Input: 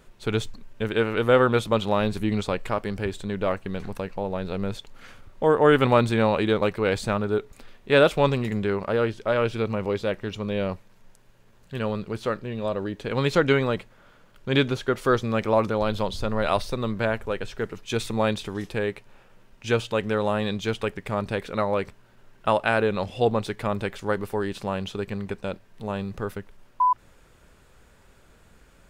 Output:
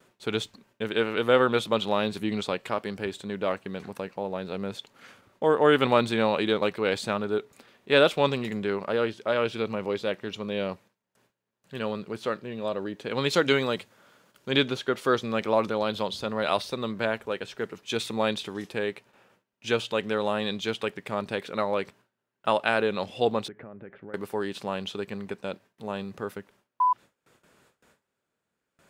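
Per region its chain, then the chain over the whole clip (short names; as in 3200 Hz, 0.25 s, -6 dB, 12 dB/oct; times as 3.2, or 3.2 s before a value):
13.3–14.51 tone controls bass 0 dB, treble +7 dB + notches 50/100/150 Hz
23.48–24.14 LPF 1800 Hz 24 dB/oct + compressor 16:1, threshold -32 dBFS + bell 1000 Hz -9.5 dB 0.87 oct
whole clip: HPF 170 Hz 12 dB/oct; gate with hold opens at -48 dBFS; dynamic EQ 3500 Hz, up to +5 dB, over -44 dBFS, Q 1.5; gain -2.5 dB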